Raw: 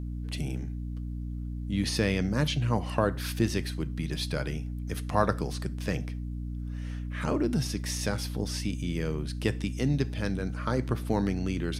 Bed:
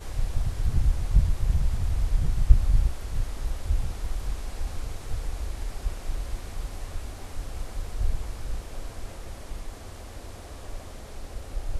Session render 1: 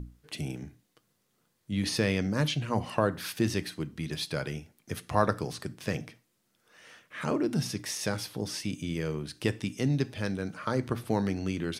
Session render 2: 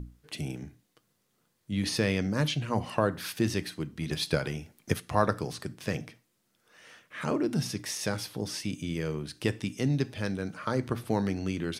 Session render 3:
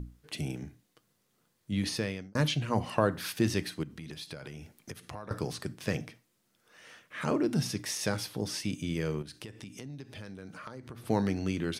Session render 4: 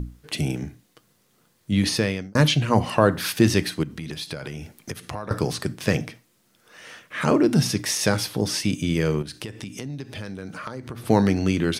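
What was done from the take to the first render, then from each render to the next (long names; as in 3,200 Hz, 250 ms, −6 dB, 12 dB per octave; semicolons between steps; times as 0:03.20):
mains-hum notches 60/120/180/240/300 Hz
0:04.01–0:05.00: transient designer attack +9 dB, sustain +4 dB
0:01.73–0:02.35: fade out; 0:03.83–0:05.31: downward compressor 5 to 1, threshold −40 dBFS; 0:09.22–0:11.05: downward compressor, threshold −41 dBFS
level +10 dB; brickwall limiter −3 dBFS, peak gain reduction 3 dB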